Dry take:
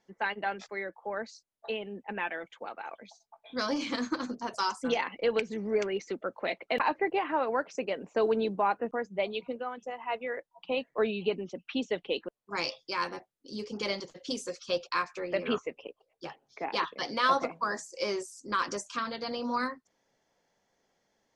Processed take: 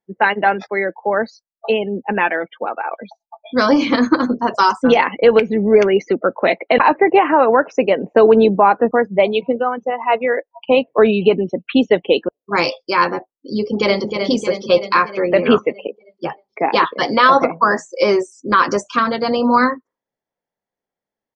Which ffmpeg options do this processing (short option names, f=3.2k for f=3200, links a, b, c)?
-filter_complex "[0:a]asplit=2[a][b];[b]afade=t=in:st=13.59:d=0.01,afade=t=out:st=14.16:d=0.01,aecho=0:1:310|620|930|1240|1550|1860|2170|2480|2790|3100:0.501187|0.325772|0.211752|0.137639|0.0894651|0.0581523|0.037799|0.0245693|0.0159701|0.0103805[c];[a][c]amix=inputs=2:normalize=0,afftdn=nr=30:nf=-48,aemphasis=mode=reproduction:type=75fm,alimiter=level_in=18.5dB:limit=-1dB:release=50:level=0:latency=1,volume=-1dB"